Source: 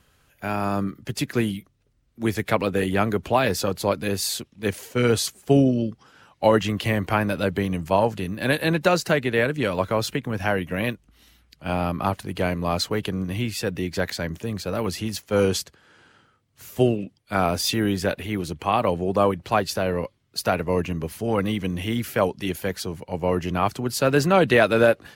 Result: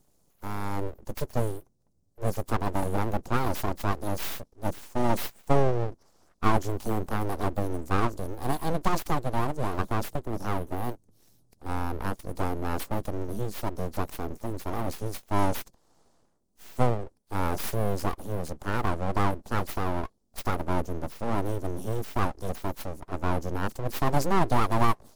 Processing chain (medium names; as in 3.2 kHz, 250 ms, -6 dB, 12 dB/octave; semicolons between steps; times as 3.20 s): Chebyshev band-stop 630–6200 Hz, order 2; full-wave rectifier; trim -1.5 dB